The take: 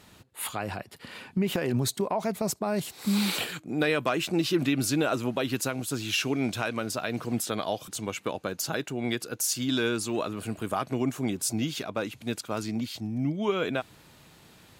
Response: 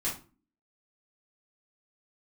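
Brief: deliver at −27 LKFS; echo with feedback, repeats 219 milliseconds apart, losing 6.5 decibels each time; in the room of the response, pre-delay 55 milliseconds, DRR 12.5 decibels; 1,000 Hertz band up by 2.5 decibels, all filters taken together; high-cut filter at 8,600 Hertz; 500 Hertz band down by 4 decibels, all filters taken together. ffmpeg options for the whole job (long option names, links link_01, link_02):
-filter_complex "[0:a]lowpass=8600,equalizer=frequency=500:width_type=o:gain=-7,equalizer=frequency=1000:width_type=o:gain=5.5,aecho=1:1:219|438|657|876|1095|1314:0.473|0.222|0.105|0.0491|0.0231|0.0109,asplit=2[link_01][link_02];[1:a]atrim=start_sample=2205,adelay=55[link_03];[link_02][link_03]afir=irnorm=-1:irlink=0,volume=-17.5dB[link_04];[link_01][link_04]amix=inputs=2:normalize=0,volume=2dB"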